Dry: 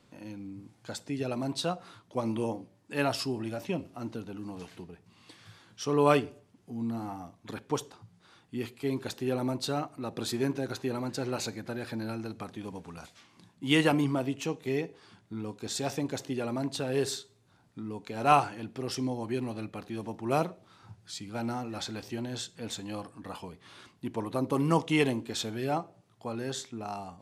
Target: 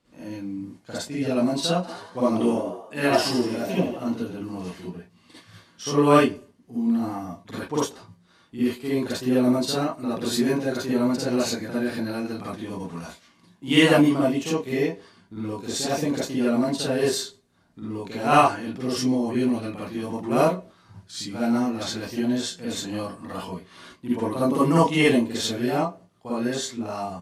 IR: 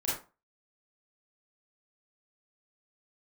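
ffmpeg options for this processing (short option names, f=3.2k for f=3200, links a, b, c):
-filter_complex "[0:a]agate=range=-7dB:threshold=-52dB:ratio=16:detection=peak,asplit=3[a][b][c];[a]afade=t=out:st=1.82:d=0.02[d];[b]asplit=7[e][f][g][h][i][j][k];[f]adelay=82,afreqshift=79,volume=-8.5dB[l];[g]adelay=164,afreqshift=158,volume=-14.3dB[m];[h]adelay=246,afreqshift=237,volume=-20.2dB[n];[i]adelay=328,afreqshift=316,volume=-26dB[o];[j]adelay=410,afreqshift=395,volume=-31.9dB[p];[k]adelay=492,afreqshift=474,volume=-37.7dB[q];[e][l][m][n][o][p][q]amix=inputs=7:normalize=0,afade=t=in:st=1.82:d=0.02,afade=t=out:st=4.07:d=0.02[r];[c]afade=t=in:st=4.07:d=0.02[s];[d][r][s]amix=inputs=3:normalize=0[t];[1:a]atrim=start_sample=2205,atrim=end_sample=3087,asetrate=31311,aresample=44100[u];[t][u]afir=irnorm=-1:irlink=0"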